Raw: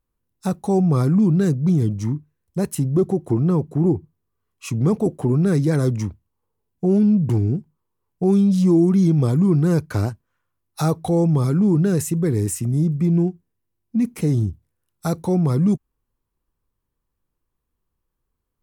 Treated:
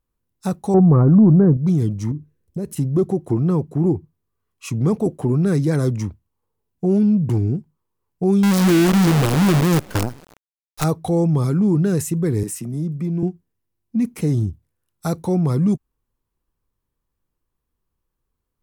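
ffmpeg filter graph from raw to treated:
-filter_complex "[0:a]asettb=1/sr,asplit=3[a][b][c];[a]atrim=end=0.744[d];[b]atrim=start=0.74:end=1.57,asetpts=PTS-STARTPTS,afade=t=in:d=0.004:c=qsin,afade=t=out:st=0.826:d=0.004:c=qsin,lowpass=f=1.2k:w=0.5412,lowpass=f=1.2k:w=1.3066,acontrast=41[e];[c]atrim=start=1.566[f];[d][e]acrossfade=d=0.004:c1=hsin:c2=qsin[g];[g][f]acrossfade=d=0.004:c1=qsin:c2=hsin,asettb=1/sr,asplit=3[h][i][j];[h]atrim=end=2.114[k];[i]atrim=start=2.11:end=2.77,asetpts=PTS-STARTPTS,afade=t=in:d=0.004:c=qsin,afade=t=out:st=0.656:d=0.004:c=qsin,acompressor=threshold=-30dB:ratio=6:attack=3.2:release=140:knee=1:detection=peak,lowshelf=f=610:t=q:w=1.5:g=7[l];[j]atrim=start=2.766[m];[k][l]acrossfade=d=0.004:c1=hsin:c2=qsin[n];[n][m]acrossfade=d=0.004:c1=qsin:c2=hsin,asettb=1/sr,asplit=3[o][p][q];[o]atrim=end=8.434[r];[p]atrim=start=8.43:end=10.84,asetpts=PTS-STARTPTS,afade=t=in:d=0.004:c=qsin,afade=t=out:st=2.406:d=0.004:c=qsin,asplit=5[s][t][u][v][w];[t]adelay=137,afreqshift=37,volume=-23.5dB[x];[u]adelay=274,afreqshift=74,volume=-28.5dB[y];[v]adelay=411,afreqshift=111,volume=-33.6dB[z];[w]adelay=548,afreqshift=148,volume=-38.6dB[aa];[s][x][y][z][aa]amix=inputs=5:normalize=0,atrim=end_sample=106281,acrusher=bits=4:dc=4:mix=0:aa=0.000001[ab];[q]atrim=start=10.836[ac];[r][ab]acrossfade=d=0.004:c1=hsin:c2=qsin[ad];[ad][ac]acrossfade=d=0.004:c1=qsin:c2=hsin,asettb=1/sr,asplit=3[ae][af][ag];[ae]atrim=end=12.434[ah];[af]atrim=start=12.43:end=13.23,asetpts=PTS-STARTPTS,afade=t=in:d=0.004:c=qsin,afade=t=out:st=0.796:d=0.004:c=qsin,highpass=f=140:w=0.5412,highpass=f=140:w=1.3066,equalizer=f=7.1k:w=5.6:g=-3,acompressor=threshold=-27dB:ratio=1.5:attack=3.2:release=140:knee=1:detection=peak[ai];[ag]atrim=start=13.226[aj];[ah][ai]acrossfade=d=0.004:c1=hsin:c2=qsin[ak];[ak][aj]acrossfade=d=0.004:c1=qsin:c2=hsin"

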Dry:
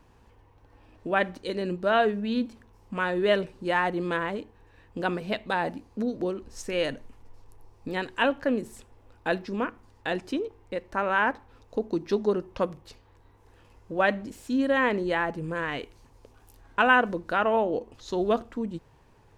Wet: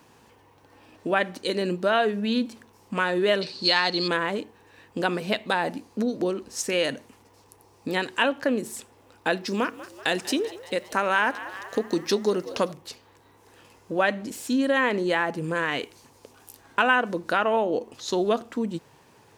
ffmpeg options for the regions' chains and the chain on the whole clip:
-filter_complex "[0:a]asettb=1/sr,asplit=3[a][b][c];[a]atrim=end=3.414[d];[b]atrim=start=3.41:end=4.08,asetpts=PTS-STARTPTS,afade=t=in:d=0.004:c=qsin,afade=t=out:st=0.666:d=0.004:c=qsin,lowpass=f=4.4k:t=q:w=13,aemphasis=mode=production:type=75fm[e];[c]atrim=start=4.076[f];[d][e]acrossfade=d=0.004:c1=hsin:c2=qsin[g];[g][f]acrossfade=d=0.004:c1=qsin:c2=hsin,asettb=1/sr,asplit=3[h][i][j];[h]atrim=end=9.454[k];[i]atrim=start=9.45:end=12.72,asetpts=PTS-STARTPTS,afade=t=in:d=0.004:c=qsin,afade=t=out:st=3.266:d=0.004:c=qsin,highshelf=f=4.4k:g=10,asplit=7[l][m][n][o][p][q][r];[m]adelay=191,afreqshift=68,volume=-19dB[s];[n]adelay=382,afreqshift=136,volume=-23dB[t];[o]adelay=573,afreqshift=204,volume=-27dB[u];[p]adelay=764,afreqshift=272,volume=-31dB[v];[q]adelay=955,afreqshift=340,volume=-35.1dB[w];[r]adelay=1146,afreqshift=408,volume=-39.1dB[x];[l][s][t][u][v][w][x]amix=inputs=7:normalize=0,atrim=end_sample=144207[y];[j]atrim=start=12.716[z];[k][y]acrossfade=d=0.004:c1=hsin:c2=qsin[aa];[aa][z]acrossfade=d=0.004:c1=qsin:c2=hsin,highpass=150,highshelf=f=3.4k:g=8.5,acompressor=threshold=-27dB:ratio=2,volume=5dB"

